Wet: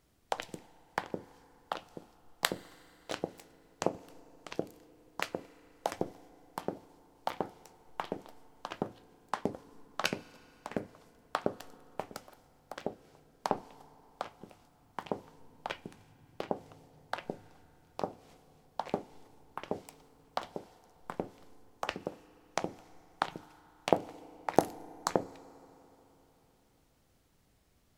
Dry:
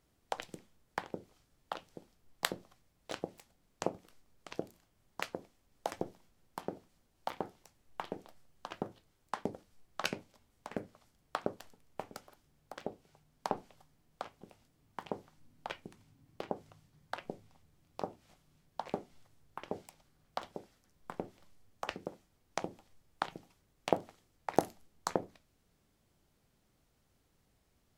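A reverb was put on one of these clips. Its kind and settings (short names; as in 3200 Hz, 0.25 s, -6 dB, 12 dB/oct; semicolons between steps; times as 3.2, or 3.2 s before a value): FDN reverb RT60 3.7 s, high-frequency decay 0.65×, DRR 19 dB; gain +3.5 dB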